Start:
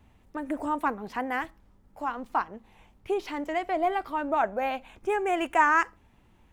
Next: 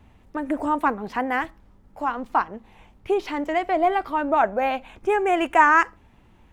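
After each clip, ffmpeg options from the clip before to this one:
ffmpeg -i in.wav -af "highshelf=frequency=5900:gain=-6,volume=6dB" out.wav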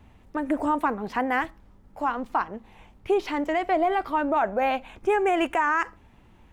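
ffmpeg -i in.wav -af "alimiter=limit=-14.5dB:level=0:latency=1:release=45" out.wav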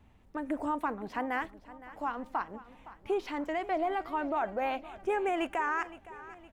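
ffmpeg -i in.wav -af "aecho=1:1:515|1030|1545|2060:0.141|0.0692|0.0339|0.0166,volume=-8dB" out.wav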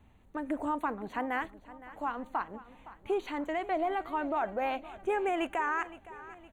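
ffmpeg -i in.wav -af "asuperstop=centerf=5200:order=8:qfactor=3.6" out.wav

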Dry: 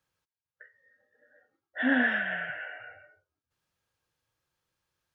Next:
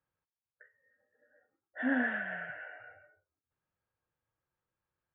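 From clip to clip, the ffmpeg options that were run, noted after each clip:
ffmpeg -i in.wav -af "lowpass=1800,volume=-4.5dB" out.wav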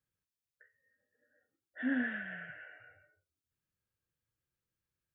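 ffmpeg -i in.wav -af "equalizer=frequency=830:width_type=o:width=1.6:gain=-14,volume=1dB" out.wav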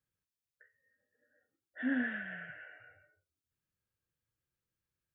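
ffmpeg -i in.wav -af anull out.wav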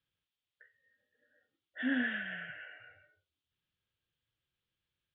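ffmpeg -i in.wav -af "lowpass=frequency=3300:width_type=q:width=4" out.wav

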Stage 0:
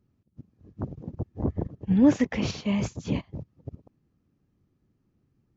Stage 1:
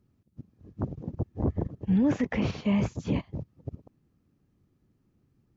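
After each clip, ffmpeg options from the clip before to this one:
ffmpeg -i in.wav -filter_complex "[0:a]acrossover=split=2700[link_01][link_02];[link_02]acompressor=threshold=-52dB:ratio=4:attack=1:release=60[link_03];[link_01][link_03]amix=inputs=2:normalize=0,alimiter=limit=-19dB:level=0:latency=1:release=13,volume=1.5dB" out.wav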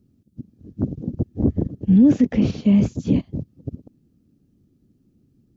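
ffmpeg -i in.wav -af "equalizer=frequency=250:width_type=o:width=1:gain=7,equalizer=frequency=1000:width_type=o:width=1:gain=-11,equalizer=frequency=2000:width_type=o:width=1:gain=-7,volume=5.5dB" out.wav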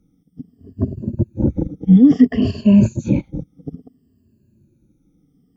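ffmpeg -i in.wav -af "afftfilt=real='re*pow(10,20/40*sin(2*PI*(1.4*log(max(b,1)*sr/1024/100)/log(2)-(-0.59)*(pts-256)/sr)))':imag='im*pow(10,20/40*sin(2*PI*(1.4*log(max(b,1)*sr/1024/100)/log(2)-(-0.59)*(pts-256)/sr)))':win_size=1024:overlap=0.75,bandreject=frequency=4000:width=8.7,volume=-1dB" out.wav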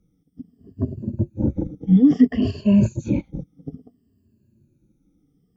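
ffmpeg -i in.wav -af "flanger=delay=1.8:depth=8.3:regen=-51:speed=0.36:shape=sinusoidal" out.wav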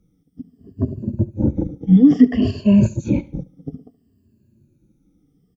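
ffmpeg -i in.wav -af "aecho=1:1:72|144|216:0.1|0.037|0.0137,volume=3dB" out.wav

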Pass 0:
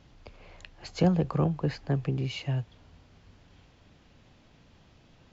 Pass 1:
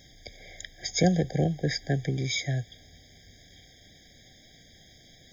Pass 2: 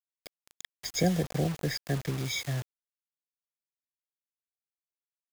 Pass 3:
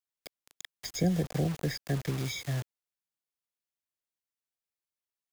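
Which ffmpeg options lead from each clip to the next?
ffmpeg -i in.wav -af "crystalizer=i=9.5:c=0,afftfilt=real='re*eq(mod(floor(b*sr/1024/780),2),0)':imag='im*eq(mod(floor(b*sr/1024/780),2),0)':win_size=1024:overlap=0.75" out.wav
ffmpeg -i in.wav -af "acrusher=bits=5:mix=0:aa=0.000001,volume=-3.5dB" out.wav
ffmpeg -i in.wav -filter_complex "[0:a]acrossover=split=410[link_01][link_02];[link_02]acompressor=threshold=-35dB:ratio=6[link_03];[link_01][link_03]amix=inputs=2:normalize=0" out.wav

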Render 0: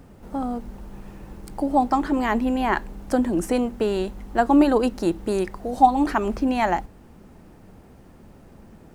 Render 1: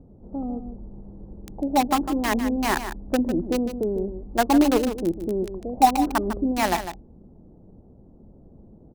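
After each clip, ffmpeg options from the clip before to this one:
ffmpeg -i in.wav -filter_complex "[0:a]acrossover=split=700[link_01][link_02];[link_02]acrusher=bits=3:mix=0:aa=0.000001[link_03];[link_01][link_03]amix=inputs=2:normalize=0,aecho=1:1:151:0.316,volume=-1.5dB" out.wav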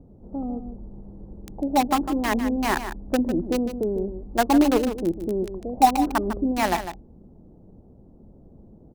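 ffmpeg -i in.wav -af "adynamicequalizer=threshold=0.00891:dfrequency=3300:dqfactor=0.7:tfrequency=3300:tqfactor=0.7:attack=5:release=100:ratio=0.375:range=2:mode=cutabove:tftype=highshelf" out.wav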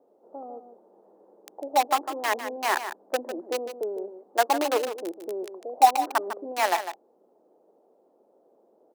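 ffmpeg -i in.wav -af "highpass=frequency=450:width=0.5412,highpass=frequency=450:width=1.3066" out.wav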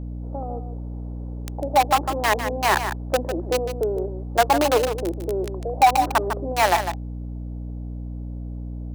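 ffmpeg -i in.wav -af "aeval=exprs='val(0)+0.0141*(sin(2*PI*60*n/s)+sin(2*PI*2*60*n/s)/2+sin(2*PI*3*60*n/s)/3+sin(2*PI*4*60*n/s)/4+sin(2*PI*5*60*n/s)/5)':channel_layout=same,asoftclip=type=tanh:threshold=-15.5dB,volume=7dB" out.wav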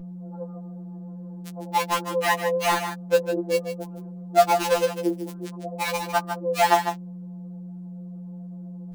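ffmpeg -i in.wav -af "afftfilt=real='re*2.83*eq(mod(b,8),0)':imag='im*2.83*eq(mod(b,8),0)':win_size=2048:overlap=0.75" out.wav

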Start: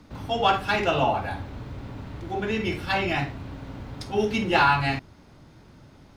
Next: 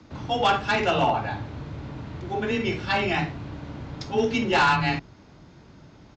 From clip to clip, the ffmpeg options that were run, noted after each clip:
ffmpeg -i in.wav -af "afreqshift=20,aresample=16000,asoftclip=type=hard:threshold=-15.5dB,aresample=44100,volume=1dB" out.wav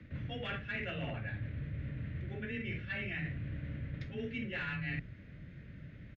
ffmpeg -i in.wav -af "firequalizer=gain_entry='entry(130,0);entry(370,-13);entry(550,-7);entry(840,-27);entry(1800,2);entry(5000,-24)':delay=0.05:min_phase=1,areverse,acompressor=threshold=-39dB:ratio=5,areverse,volume=2dB" out.wav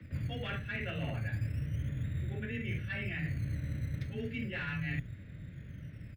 ffmpeg -i in.wav -filter_complex "[0:a]equalizer=frequency=98:width_type=o:width=1.3:gain=6.5,acrossover=split=110[link_01][link_02];[link_01]acrusher=samples=17:mix=1:aa=0.000001:lfo=1:lforange=10.2:lforate=0.33[link_03];[link_03][link_02]amix=inputs=2:normalize=0" out.wav

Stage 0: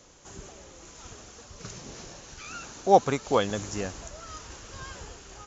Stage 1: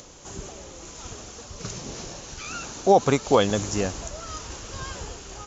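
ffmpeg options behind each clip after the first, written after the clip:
ffmpeg -i in.wav -af "equalizer=frequency=1700:width=1.5:gain=-3.5,acompressor=mode=upward:threshold=-50dB:ratio=2.5,alimiter=level_in=12.5dB:limit=-1dB:release=50:level=0:latency=1,volume=-5.5dB" out.wav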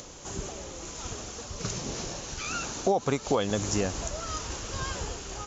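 ffmpeg -i in.wav -af "acompressor=threshold=-25dB:ratio=4,volume=1.5dB" out.wav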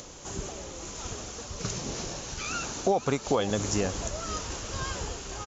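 ffmpeg -i in.wav -af "aecho=1:1:525:0.168" out.wav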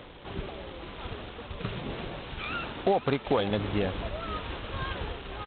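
ffmpeg -i in.wav -ar 8000 -c:a adpcm_g726 -b:a 16k out.wav

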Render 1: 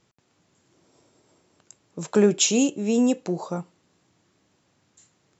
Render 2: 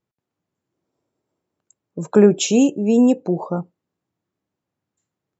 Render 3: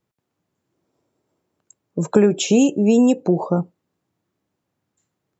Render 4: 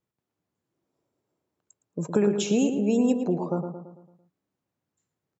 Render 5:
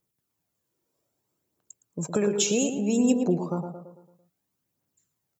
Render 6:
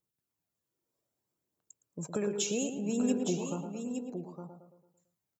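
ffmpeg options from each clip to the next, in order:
ffmpeg -i in.wav -af "afftdn=noise_reduction=21:noise_floor=-40,highshelf=frequency=2300:gain=-10,volume=6.5dB" out.wav
ffmpeg -i in.wav -filter_complex "[0:a]acrossover=split=690|2400[link_01][link_02][link_03];[link_01]acompressor=threshold=-18dB:ratio=4[link_04];[link_02]acompressor=threshold=-36dB:ratio=4[link_05];[link_03]acompressor=threshold=-30dB:ratio=4[link_06];[link_04][link_05][link_06]amix=inputs=3:normalize=0,volume=5.5dB" out.wav
ffmpeg -i in.wav -filter_complex "[0:a]asplit=2[link_01][link_02];[link_02]adelay=112,lowpass=frequency=2400:poles=1,volume=-7dB,asplit=2[link_03][link_04];[link_04]adelay=112,lowpass=frequency=2400:poles=1,volume=0.5,asplit=2[link_05][link_06];[link_06]adelay=112,lowpass=frequency=2400:poles=1,volume=0.5,asplit=2[link_07][link_08];[link_08]adelay=112,lowpass=frequency=2400:poles=1,volume=0.5,asplit=2[link_09][link_10];[link_10]adelay=112,lowpass=frequency=2400:poles=1,volume=0.5,asplit=2[link_11][link_12];[link_12]adelay=112,lowpass=frequency=2400:poles=1,volume=0.5[link_13];[link_01][link_03][link_05][link_07][link_09][link_11][link_13]amix=inputs=7:normalize=0,volume=-8.5dB" out.wav
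ffmpeg -i in.wav -af "aphaser=in_gain=1:out_gain=1:delay=2.3:decay=0.38:speed=0.62:type=triangular,crystalizer=i=2.5:c=0,volume=-1.5dB" out.wav
ffmpeg -i in.wav -af "aecho=1:1:864:0.422,volume=-8dB" out.wav

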